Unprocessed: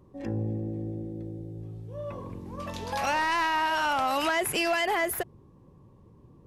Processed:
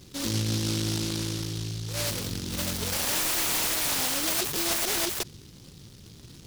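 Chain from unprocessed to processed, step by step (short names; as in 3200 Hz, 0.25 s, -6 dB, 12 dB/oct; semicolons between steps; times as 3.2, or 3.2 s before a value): limiter -27 dBFS, peak gain reduction 8 dB; noise-modulated delay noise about 4400 Hz, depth 0.37 ms; gain +6.5 dB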